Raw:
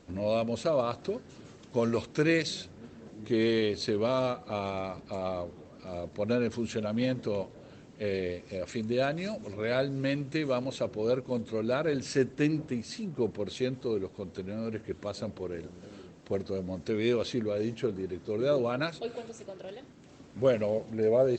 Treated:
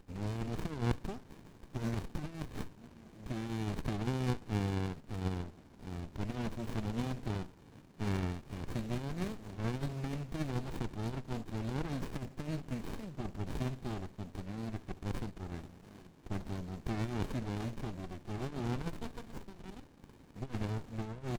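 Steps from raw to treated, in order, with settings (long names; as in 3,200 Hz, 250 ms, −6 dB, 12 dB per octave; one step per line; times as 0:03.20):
loose part that buzzes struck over −32 dBFS, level −38 dBFS
first-order pre-emphasis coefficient 0.9
compressor whose output falls as the input rises −46 dBFS, ratio −0.5
repeating echo 69 ms, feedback 44%, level −20 dB
windowed peak hold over 65 samples
level +11.5 dB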